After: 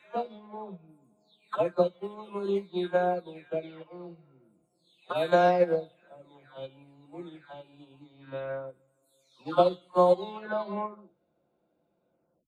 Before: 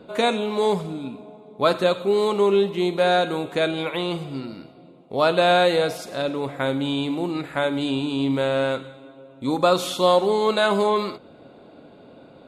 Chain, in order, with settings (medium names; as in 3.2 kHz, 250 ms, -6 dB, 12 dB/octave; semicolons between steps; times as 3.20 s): delay that grows with frequency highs early, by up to 747 ms; treble shelf 3.1 kHz -11 dB; upward expansion 2.5:1, over -32 dBFS